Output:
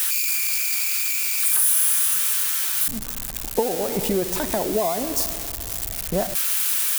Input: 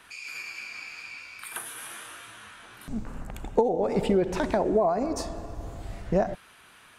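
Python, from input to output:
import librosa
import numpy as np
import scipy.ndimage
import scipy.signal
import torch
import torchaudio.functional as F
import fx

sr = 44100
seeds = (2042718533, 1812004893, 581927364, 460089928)

y = x + 0.5 * 10.0 ** (-17.5 / 20.0) * np.diff(np.sign(x), prepend=np.sign(x[:1]))
y = fx.high_shelf(y, sr, hz=9700.0, db=5.5)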